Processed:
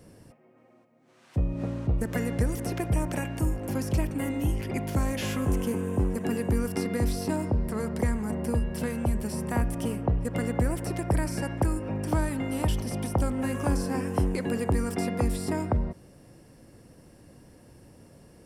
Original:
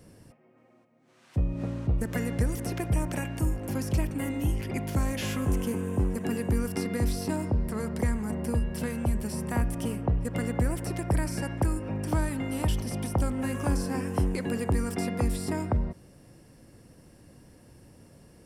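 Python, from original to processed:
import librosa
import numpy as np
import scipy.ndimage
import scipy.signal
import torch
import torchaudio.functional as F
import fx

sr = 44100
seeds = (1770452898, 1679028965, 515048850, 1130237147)

y = fx.peak_eq(x, sr, hz=560.0, db=2.5, octaves=2.3)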